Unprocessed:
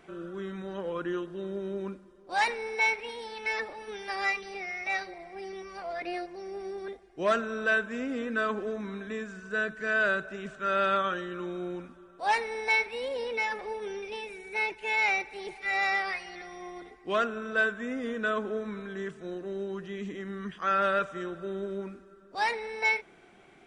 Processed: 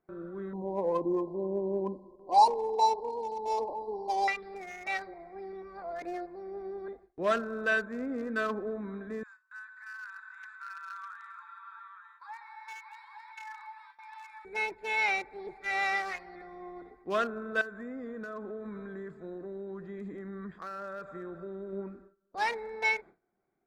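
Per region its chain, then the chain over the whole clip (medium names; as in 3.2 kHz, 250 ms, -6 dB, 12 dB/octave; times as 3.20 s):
0.53–4.28 s: brick-wall FIR band-stop 1.1–3.9 kHz + peaking EQ 1.1 kHz +10.5 dB 3 oct
9.23–14.45 s: compression 8:1, threshold -34 dBFS + brick-wall FIR high-pass 830 Hz + multi-tap echo 125/256/425/619/741/864 ms -14.5/-11/-17/-7.5/-18/-6 dB
17.61–21.73 s: compression 4:1, threshold -35 dBFS + treble shelf 3.9 kHz +4.5 dB
whole clip: local Wiener filter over 15 samples; gate with hold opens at -43 dBFS; trim -1.5 dB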